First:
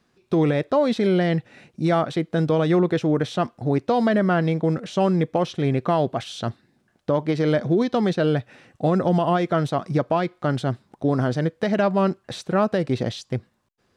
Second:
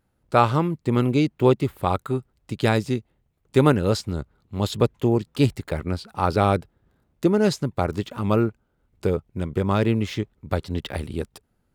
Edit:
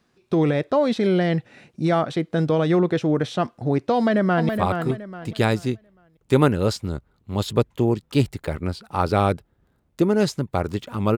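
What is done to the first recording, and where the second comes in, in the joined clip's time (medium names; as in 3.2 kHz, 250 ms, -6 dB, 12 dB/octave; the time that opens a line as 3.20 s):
first
3.95–4.49 s: echo throw 420 ms, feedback 30%, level -6 dB
4.49 s: go over to second from 1.73 s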